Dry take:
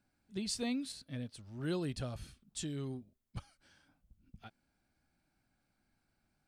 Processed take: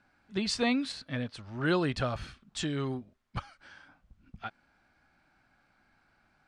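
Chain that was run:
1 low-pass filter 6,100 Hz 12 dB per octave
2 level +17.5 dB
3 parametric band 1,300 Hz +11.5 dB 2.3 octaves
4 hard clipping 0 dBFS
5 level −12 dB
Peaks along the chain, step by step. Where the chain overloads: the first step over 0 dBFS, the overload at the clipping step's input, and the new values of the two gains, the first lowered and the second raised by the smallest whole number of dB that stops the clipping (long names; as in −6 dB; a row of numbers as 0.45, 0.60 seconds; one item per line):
−25.5, −8.0, −4.5, −4.5, −16.5 dBFS
no step passes full scale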